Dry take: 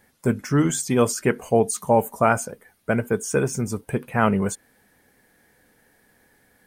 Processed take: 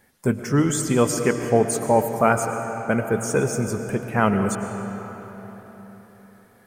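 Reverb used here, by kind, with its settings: algorithmic reverb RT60 4.4 s, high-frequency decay 0.65×, pre-delay 70 ms, DRR 6.5 dB

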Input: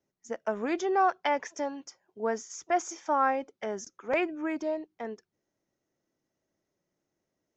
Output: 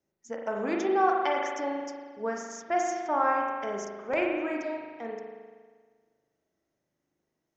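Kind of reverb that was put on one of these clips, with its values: spring tank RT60 1.6 s, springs 39 ms, chirp 25 ms, DRR -0.5 dB; trim -2 dB

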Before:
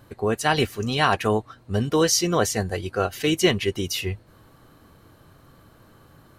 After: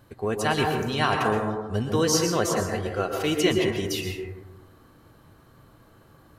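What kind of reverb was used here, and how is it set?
plate-style reverb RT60 1.1 s, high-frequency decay 0.3×, pre-delay 105 ms, DRR 2 dB; trim -4 dB

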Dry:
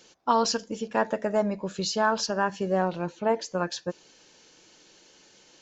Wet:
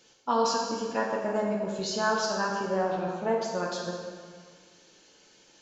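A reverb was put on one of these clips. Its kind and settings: plate-style reverb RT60 1.8 s, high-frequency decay 0.8×, DRR -1.5 dB; trim -5.5 dB

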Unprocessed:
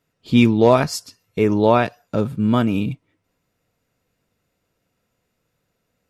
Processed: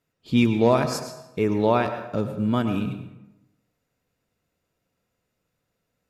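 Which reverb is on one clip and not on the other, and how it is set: plate-style reverb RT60 0.93 s, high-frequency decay 0.65×, pre-delay 85 ms, DRR 8 dB; trim -5.5 dB

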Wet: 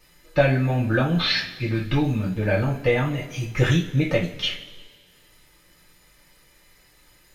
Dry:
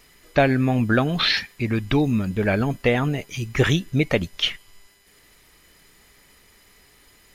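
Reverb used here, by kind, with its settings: two-slope reverb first 0.29 s, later 1.7 s, from -19 dB, DRR -5.5 dB; trim -8.5 dB

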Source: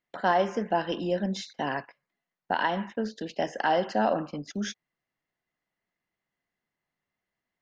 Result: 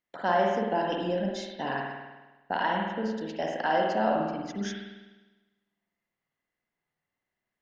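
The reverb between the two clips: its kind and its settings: spring tank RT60 1.2 s, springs 50 ms, chirp 65 ms, DRR -0.5 dB; trim -3.5 dB

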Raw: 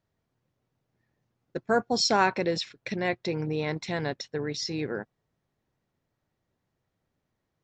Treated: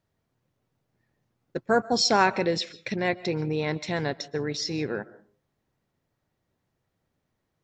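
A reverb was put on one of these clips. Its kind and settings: algorithmic reverb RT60 0.42 s, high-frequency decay 0.45×, pre-delay 100 ms, DRR 19 dB; trim +2 dB

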